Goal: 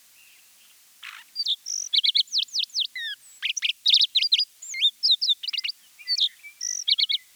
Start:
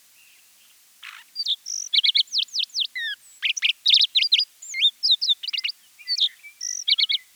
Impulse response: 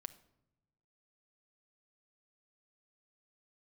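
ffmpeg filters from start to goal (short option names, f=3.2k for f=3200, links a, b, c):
-filter_complex "[0:a]acrossover=split=330|3000[a][b][c];[b]acompressor=threshold=-35dB:ratio=6[d];[a][d][c]amix=inputs=3:normalize=0"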